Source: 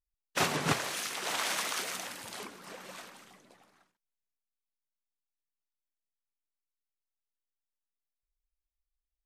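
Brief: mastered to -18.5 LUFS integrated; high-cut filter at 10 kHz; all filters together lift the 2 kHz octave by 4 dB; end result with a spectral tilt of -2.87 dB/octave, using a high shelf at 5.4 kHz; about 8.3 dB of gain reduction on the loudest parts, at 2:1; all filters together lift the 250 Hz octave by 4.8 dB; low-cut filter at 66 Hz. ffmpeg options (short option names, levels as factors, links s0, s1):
-af "highpass=66,lowpass=10000,equalizer=f=250:t=o:g=6.5,equalizer=f=2000:t=o:g=6,highshelf=f=5400:g=-7.5,acompressor=threshold=0.0141:ratio=2,volume=8.91"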